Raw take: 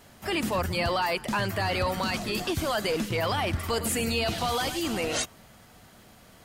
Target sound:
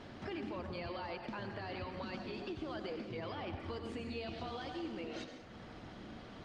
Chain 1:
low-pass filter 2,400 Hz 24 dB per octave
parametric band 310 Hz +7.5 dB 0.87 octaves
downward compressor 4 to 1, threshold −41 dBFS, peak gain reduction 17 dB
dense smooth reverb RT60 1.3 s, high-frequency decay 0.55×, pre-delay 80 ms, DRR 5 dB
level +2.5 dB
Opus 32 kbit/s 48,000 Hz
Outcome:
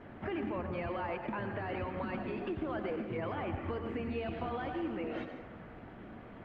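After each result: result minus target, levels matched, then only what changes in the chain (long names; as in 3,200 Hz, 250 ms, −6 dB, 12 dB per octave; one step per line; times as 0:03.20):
4,000 Hz band −10.5 dB; downward compressor: peak gain reduction −5.5 dB
change: low-pass filter 4,900 Hz 24 dB per octave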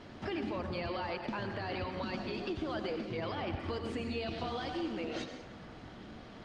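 downward compressor: peak gain reduction −5 dB
change: downward compressor 4 to 1, threshold −48 dBFS, peak gain reduction 22 dB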